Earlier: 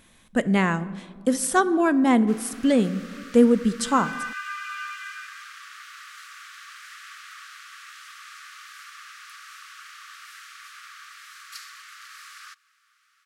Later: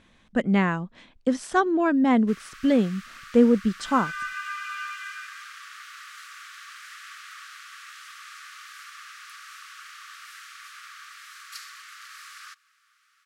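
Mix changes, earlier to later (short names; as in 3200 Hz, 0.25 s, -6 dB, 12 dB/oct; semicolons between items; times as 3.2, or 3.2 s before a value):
speech: add air absorption 110 m; reverb: off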